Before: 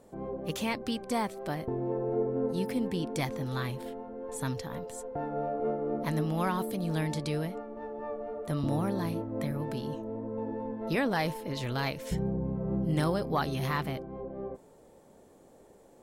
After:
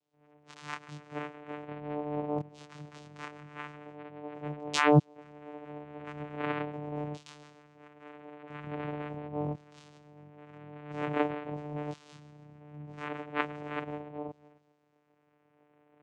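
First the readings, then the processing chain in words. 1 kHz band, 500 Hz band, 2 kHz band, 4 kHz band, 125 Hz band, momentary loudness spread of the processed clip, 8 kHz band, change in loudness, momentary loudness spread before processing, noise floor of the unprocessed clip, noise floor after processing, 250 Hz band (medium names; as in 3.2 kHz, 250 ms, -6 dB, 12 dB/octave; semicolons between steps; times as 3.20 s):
-1.5 dB, -4.0 dB, 0.0 dB, -3.5 dB, -4.0 dB, 19 LU, -4.5 dB, -2.0 dB, 10 LU, -57 dBFS, -70 dBFS, -5.0 dB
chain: level rider gain up to 7 dB; on a send: two-band feedback delay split 350 Hz, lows 233 ms, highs 133 ms, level -15 dB; on the sum: LFO band-pass saw down 0.42 Hz 510–4000 Hz; chorus voices 6, 0.75 Hz, delay 24 ms, depth 2.8 ms; painted sound fall, 4.73–4.99 s, 210–4800 Hz -21 dBFS; vocoder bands 4, saw 148 Hz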